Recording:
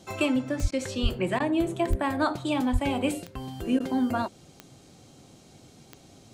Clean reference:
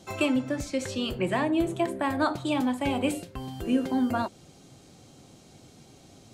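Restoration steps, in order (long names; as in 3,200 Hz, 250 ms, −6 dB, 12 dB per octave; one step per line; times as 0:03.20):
click removal
high-pass at the plosives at 0:00.61/0:01.02/0:01.89/0:02.72
repair the gap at 0:00.71/0:01.39/0:03.79, 10 ms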